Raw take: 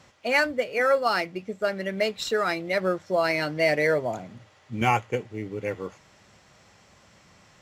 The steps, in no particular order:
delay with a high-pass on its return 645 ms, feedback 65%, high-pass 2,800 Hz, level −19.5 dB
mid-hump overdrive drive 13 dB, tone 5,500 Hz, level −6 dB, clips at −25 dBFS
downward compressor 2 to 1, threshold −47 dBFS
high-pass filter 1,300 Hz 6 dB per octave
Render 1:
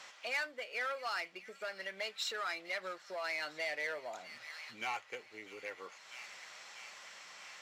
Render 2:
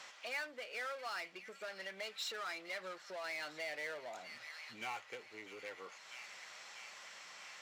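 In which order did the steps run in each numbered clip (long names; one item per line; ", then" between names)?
delay with a high-pass on its return, then downward compressor, then mid-hump overdrive, then high-pass filter
delay with a high-pass on its return, then mid-hump overdrive, then downward compressor, then high-pass filter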